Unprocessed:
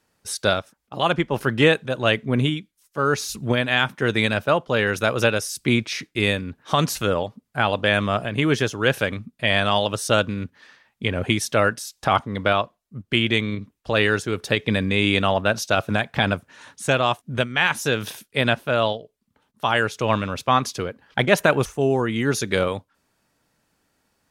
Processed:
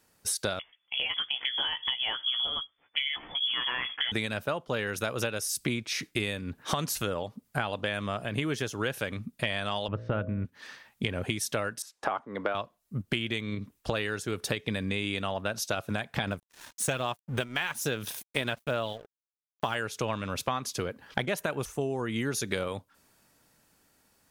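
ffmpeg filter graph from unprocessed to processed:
ffmpeg -i in.wav -filter_complex "[0:a]asettb=1/sr,asplit=3[link_01][link_02][link_03];[link_01]atrim=end=0.594[link_04];[link_02]atrim=start=0.59:end=4.12,asetpts=PTS-STARTPTS,afade=type=in:duration=0.004:curve=qsin,afade=type=out:start_time=3.526:duration=0.004:curve=qsin,acompressor=threshold=-23dB:ratio=6:attack=3.2:release=140:knee=1:detection=peak,asplit=2[link_05][link_06];[link_06]adelay=15,volume=-5.5dB[link_07];[link_05][link_07]amix=inputs=2:normalize=0,atrim=end_sample=155673,lowpass=frequency=3000:width_type=q:width=0.5098,lowpass=frequency=3000:width_type=q:width=0.6013,lowpass=frequency=3000:width_type=q:width=0.9,lowpass=frequency=3000:width_type=q:width=2.563,afreqshift=-3500[link_08];[link_03]atrim=start=4.116[link_09];[link_04][link_08]acrossfade=duration=0.004:curve1=hsin:curve2=qsin[link_10];[link_10][link_09]acrossfade=duration=0.004:curve1=qsin:curve2=hsin,asettb=1/sr,asplit=3[link_11][link_12][link_13];[link_11]atrim=end=9.884[link_14];[link_12]atrim=start=9.88:end=10.45,asetpts=PTS-STARTPTS,afade=type=in:duration=0.004:curve=qsin,afade=type=out:start_time=0.566:duration=0.004:curve=qsin,lowpass=frequency=2100:width=0.5412,lowpass=frequency=2100:width=1.3066,lowshelf=frequency=210:gain=11.5,bandreject=frequency=57.32:width_type=h:width=4,bandreject=frequency=114.64:width_type=h:width=4,bandreject=frequency=171.96:width_type=h:width=4,bandreject=frequency=229.28:width_type=h:width=4,bandreject=frequency=286.6:width_type=h:width=4,bandreject=frequency=343.92:width_type=h:width=4,bandreject=frequency=401.24:width_type=h:width=4,bandreject=frequency=458.56:width_type=h:width=4,bandreject=frequency=515.88:width_type=h:width=4,bandreject=frequency=573.2:width_type=h:width=4,bandreject=frequency=630.52:width_type=h:width=4[link_15];[link_13]atrim=start=10.446[link_16];[link_14][link_15]acrossfade=duration=0.004:curve1=hsin:curve2=qsin[link_17];[link_17][link_16]acrossfade=duration=0.004:curve1=qsin:curve2=hsin,asettb=1/sr,asplit=3[link_18][link_19][link_20];[link_18]atrim=end=11.824[link_21];[link_19]atrim=start=11.82:end=12.55,asetpts=PTS-STARTPTS,afade=type=in:duration=0.004:curve=qsin,afade=type=out:start_time=0.726:duration=0.004:curve=qsin,lowpass=9400,acrossover=split=250 2000:gain=0.1 1 0.178[link_22][link_23][link_24];[link_22][link_23][link_24]amix=inputs=3:normalize=0[link_25];[link_20]atrim=start=12.546[link_26];[link_21][link_25]acrossfade=duration=0.004:curve1=hsin:curve2=qsin[link_27];[link_27][link_26]acrossfade=duration=0.004:curve1=qsin:curve2=hsin,asettb=1/sr,asplit=3[link_28][link_29][link_30];[link_28]atrim=end=16.274[link_31];[link_29]atrim=start=16.27:end=19.75,asetpts=PTS-STARTPTS,afade=type=in:duration=0.004:curve=qsin,afade=type=out:start_time=3.476:duration=0.004:curve=qsin,aeval=exprs='sgn(val(0))*max(abs(val(0))-0.00596,0)':channel_layout=same,aphaser=in_gain=1:out_gain=1:delay=3.2:decay=0.3:speed=1.2:type=sinusoidal[link_32];[link_30]atrim=start=19.746[link_33];[link_31][link_32]acrossfade=duration=0.004:curve1=hsin:curve2=qsin[link_34];[link_34][link_33]acrossfade=duration=0.004:curve1=qsin:curve2=hsin,dynaudnorm=framelen=460:gausssize=7:maxgain=11.5dB,highshelf=frequency=7800:gain=9.5,acompressor=threshold=-27dB:ratio=12" out.wav

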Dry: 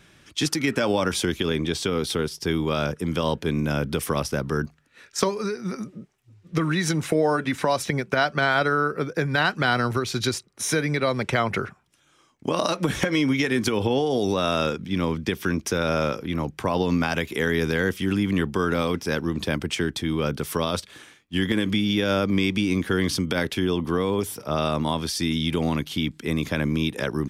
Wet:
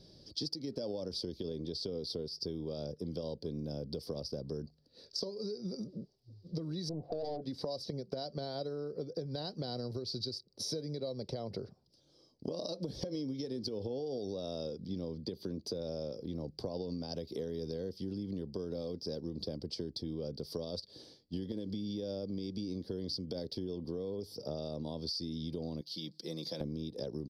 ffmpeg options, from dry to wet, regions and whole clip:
ffmpeg -i in.wav -filter_complex "[0:a]asettb=1/sr,asplit=3[link_01][link_02][link_03];[link_01]atrim=end=6.894[link_04];[link_02]atrim=start=6.89:end=7.42,asetpts=PTS-STARTPTS,afade=type=in:duration=0.004:curve=qsin,afade=type=out:start_time=0.526:duration=0.004:curve=qsin,lowpass=frequency=720:width_type=q:width=8.7,aeval=exprs='(tanh(7.94*val(0)+0.35)-tanh(0.35))/7.94':channel_layout=same[link_05];[link_03]atrim=start=7.416[link_06];[link_04][link_05]acrossfade=duration=0.004:curve1=hsin:curve2=qsin[link_07];[link_07][link_06]acrossfade=duration=0.004:curve1=qsin:curve2=hsin,asettb=1/sr,asplit=3[link_08][link_09][link_10];[link_08]atrim=end=15.204[link_11];[link_09]atrim=start=15.2:end=15.81,asetpts=PTS-STARTPTS,afade=type=in:duration=0.004:curve=qsin,afade=type=out:start_time=0.606:duration=0.004:curve=qsin,highpass=75,bandreject=frequency=5400:width=5.1[link_12];[link_10]atrim=start=15.806[link_13];[link_11][link_12]acrossfade=duration=0.004:curve1=hsin:curve2=qsin[link_14];[link_14][link_13]acrossfade=duration=0.004:curve1=qsin:curve2=hsin,asettb=1/sr,asplit=3[link_15][link_16][link_17];[link_15]atrim=end=25.814[link_18];[link_16]atrim=start=25.81:end=26.61,asetpts=PTS-STARTPTS,afade=type=in:duration=0.004:curve=qsin,afade=type=out:start_time=0.796:duration=0.004:curve=qsin,highpass=240,equalizer=frequency=310:width=0.43:gain=-11,aecho=1:1:5.9:0.54,atrim=end_sample=35280[link_19];[link_17]atrim=start=26.606[link_20];[link_18][link_19]acrossfade=duration=0.004:curve1=hsin:curve2=qsin[link_21];[link_21][link_20]acrossfade=duration=0.004:curve1=qsin:curve2=hsin,firequalizer=gain_entry='entry(340,0);entry(510,5);entry(780,-7);entry(1300,-23);entry(2500,-23);entry(4700,13);entry(6800,-17);entry(12000,-13)':delay=0.05:min_phase=1,acompressor=threshold=-34dB:ratio=6,volume=-2.5dB" out.wav

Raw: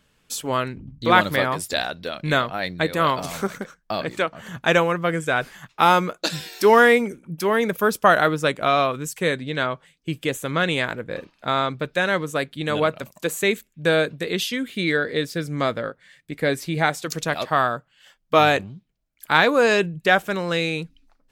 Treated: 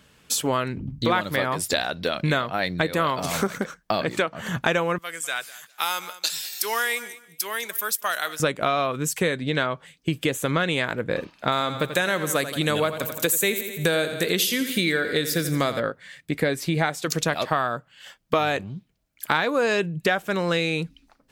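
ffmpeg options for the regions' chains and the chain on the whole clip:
ffmpeg -i in.wav -filter_complex "[0:a]asettb=1/sr,asplit=3[link_01][link_02][link_03];[link_01]atrim=end=4.984[link_04];[link_02]atrim=start=4.98:end=8.4,asetpts=PTS-STARTPTS,afade=type=in:duration=0.004:curve=qsin,afade=type=out:start_time=3.416:duration=0.004:curve=qsin,aderivative,aecho=1:1:200|400:0.112|0.0202,atrim=end_sample=150822[link_05];[link_03]atrim=start=8.396[link_06];[link_04][link_05]acrossfade=duration=0.004:curve1=hsin:curve2=qsin[link_07];[link_07][link_06]acrossfade=duration=0.004:curve1=qsin:curve2=hsin,asettb=1/sr,asplit=3[link_08][link_09][link_10];[link_08]atrim=end=11.524[link_11];[link_09]atrim=start=11.52:end=15.8,asetpts=PTS-STARTPTS,afade=type=in:duration=0.004:curve=qsin,afade=type=out:start_time=4.276:duration=0.004:curve=qsin,aemphasis=mode=production:type=50fm,aecho=1:1:85|170|255|340|425:0.237|0.116|0.0569|0.0279|0.0137,atrim=end_sample=188748[link_12];[link_10]atrim=start=15.796[link_13];[link_11][link_12]acrossfade=duration=0.004:curve1=hsin:curve2=qsin[link_14];[link_14][link_13]acrossfade=duration=0.004:curve1=qsin:curve2=hsin,highpass=48,acompressor=threshold=-28dB:ratio=5,volume=7.5dB" out.wav

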